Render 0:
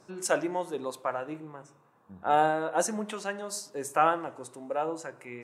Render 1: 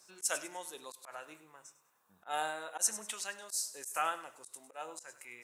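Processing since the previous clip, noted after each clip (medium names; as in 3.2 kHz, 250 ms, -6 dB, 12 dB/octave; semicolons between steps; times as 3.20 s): pre-emphasis filter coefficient 0.97; thinning echo 100 ms, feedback 35%, high-pass 830 Hz, level -16 dB; slow attack 104 ms; trim +6.5 dB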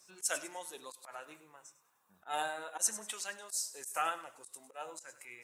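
coarse spectral quantiser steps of 15 dB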